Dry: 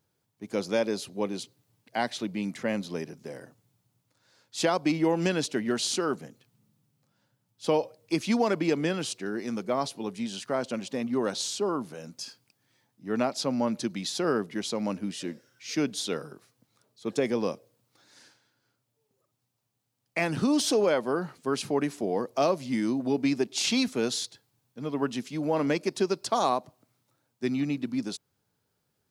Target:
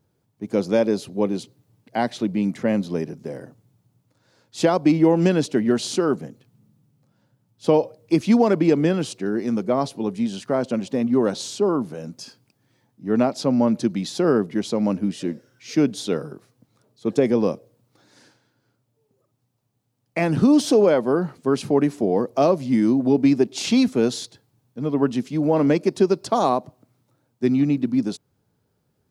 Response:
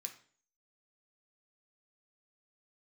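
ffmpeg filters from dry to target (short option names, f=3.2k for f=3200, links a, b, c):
-af "tiltshelf=f=860:g=5.5,volume=5dB"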